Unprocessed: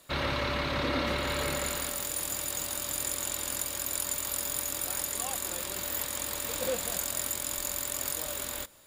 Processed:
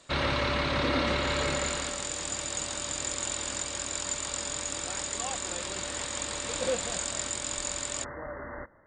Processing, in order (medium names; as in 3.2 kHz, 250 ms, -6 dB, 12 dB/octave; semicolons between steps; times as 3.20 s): brick-wall FIR low-pass 9.2 kHz, from 8.03 s 2.1 kHz; trim +2.5 dB